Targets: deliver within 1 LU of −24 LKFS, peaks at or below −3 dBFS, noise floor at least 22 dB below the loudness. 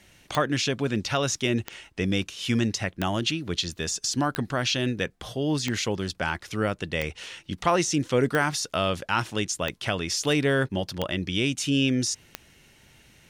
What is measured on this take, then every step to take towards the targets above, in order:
number of clicks 10; integrated loudness −26.5 LKFS; sample peak −9.0 dBFS; target loudness −24.0 LKFS
→ click removal
level +2.5 dB

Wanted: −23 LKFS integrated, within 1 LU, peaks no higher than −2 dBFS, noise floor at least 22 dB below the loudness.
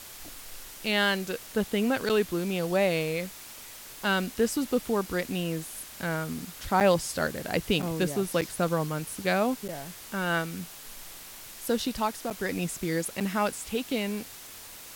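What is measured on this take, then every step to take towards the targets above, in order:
number of dropouts 7; longest dropout 7.8 ms; background noise floor −45 dBFS; target noise floor −51 dBFS; integrated loudness −29.0 LKFS; sample peak −10.5 dBFS; target loudness −23.0 LKFS
→ repair the gap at 0:02.09/0:06.80/0:07.82/0:08.41/0:09.68/0:12.30/0:13.20, 7.8 ms
noise reduction from a noise print 6 dB
level +6 dB

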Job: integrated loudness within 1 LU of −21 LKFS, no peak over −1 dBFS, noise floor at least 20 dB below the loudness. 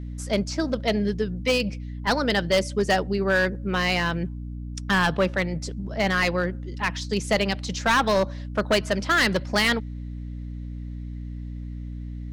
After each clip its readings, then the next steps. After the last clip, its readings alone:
share of clipped samples 1.3%; peaks flattened at −15.0 dBFS; mains hum 60 Hz; hum harmonics up to 300 Hz; level of the hum −32 dBFS; integrated loudness −24.0 LKFS; sample peak −15.0 dBFS; target loudness −21.0 LKFS
→ clipped peaks rebuilt −15 dBFS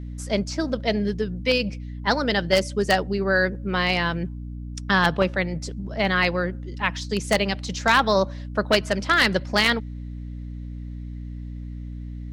share of clipped samples 0.0%; mains hum 60 Hz; hum harmonics up to 300 Hz; level of the hum −31 dBFS
→ mains-hum notches 60/120/180/240/300 Hz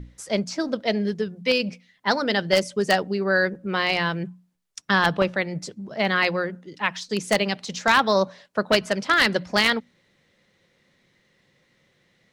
mains hum none found; integrated loudness −23.0 LKFS; sample peak −5.0 dBFS; target loudness −21.0 LKFS
→ level +2 dB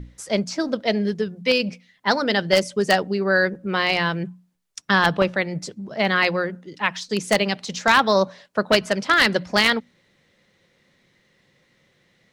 integrated loudness −21.0 LKFS; sample peak −3.0 dBFS; background noise floor −64 dBFS

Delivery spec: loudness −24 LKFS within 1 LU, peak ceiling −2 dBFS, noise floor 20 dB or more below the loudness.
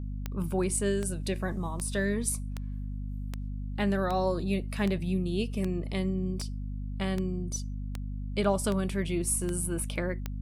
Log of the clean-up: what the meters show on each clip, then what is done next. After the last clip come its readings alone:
number of clicks 14; mains hum 50 Hz; hum harmonics up to 250 Hz; level of the hum −33 dBFS; integrated loudness −31.5 LKFS; sample peak −15.0 dBFS; target loudness −24.0 LKFS
→ click removal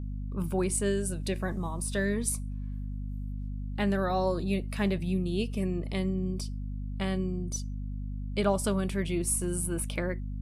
number of clicks 0; mains hum 50 Hz; hum harmonics up to 250 Hz; level of the hum −33 dBFS
→ hum removal 50 Hz, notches 5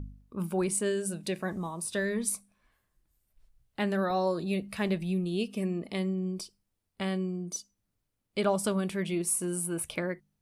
mains hum none found; integrated loudness −31.5 LKFS; sample peak −16.0 dBFS; target loudness −24.0 LKFS
→ level +7.5 dB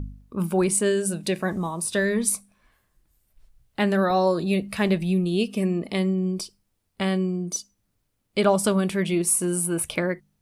integrated loudness −24.0 LKFS; sample peak −8.5 dBFS; background noise floor −74 dBFS

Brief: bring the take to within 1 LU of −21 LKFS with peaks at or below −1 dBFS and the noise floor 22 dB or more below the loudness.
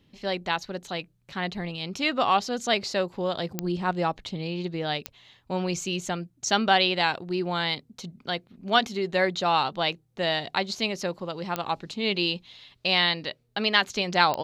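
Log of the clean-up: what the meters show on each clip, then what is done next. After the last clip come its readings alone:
number of clicks 4; integrated loudness −27.0 LKFS; sample peak −4.5 dBFS; target loudness −21.0 LKFS
→ click removal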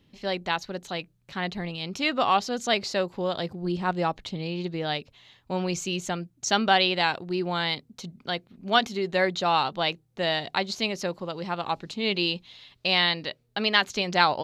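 number of clicks 0; integrated loudness −27.0 LKFS; sample peak −4.5 dBFS; target loudness −21.0 LKFS
→ level +6 dB
brickwall limiter −1 dBFS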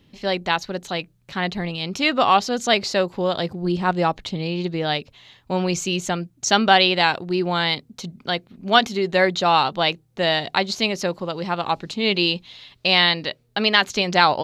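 integrated loudness −21.0 LKFS; sample peak −1.0 dBFS; background noise floor −60 dBFS

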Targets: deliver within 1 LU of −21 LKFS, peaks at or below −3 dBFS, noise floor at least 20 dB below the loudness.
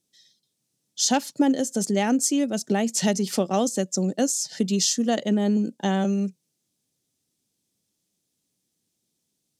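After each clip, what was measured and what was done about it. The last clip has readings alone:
integrated loudness −23.5 LKFS; sample peak −10.0 dBFS; target loudness −21.0 LKFS
→ level +2.5 dB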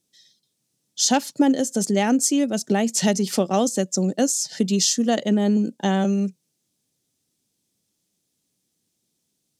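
integrated loudness −21.0 LKFS; sample peak −7.5 dBFS; background noise floor −75 dBFS

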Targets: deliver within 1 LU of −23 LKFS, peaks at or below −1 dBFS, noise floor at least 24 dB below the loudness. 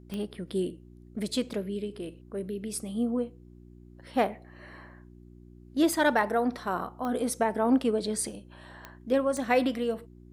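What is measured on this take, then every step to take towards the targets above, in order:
number of clicks 5; mains hum 60 Hz; hum harmonics up to 360 Hz; level of the hum −49 dBFS; integrated loudness −29.5 LKFS; sample peak −11.5 dBFS; target loudness −23.0 LKFS
→ click removal
hum removal 60 Hz, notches 6
level +6.5 dB

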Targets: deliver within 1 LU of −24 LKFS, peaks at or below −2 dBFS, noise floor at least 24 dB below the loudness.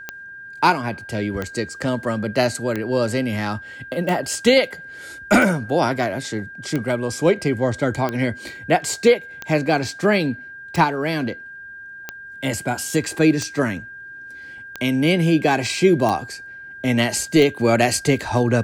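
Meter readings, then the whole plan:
number of clicks 14; interfering tone 1,600 Hz; level of the tone −35 dBFS; integrated loudness −20.5 LKFS; sample peak −3.0 dBFS; target loudness −24.0 LKFS
→ click removal
notch filter 1,600 Hz, Q 30
level −3.5 dB

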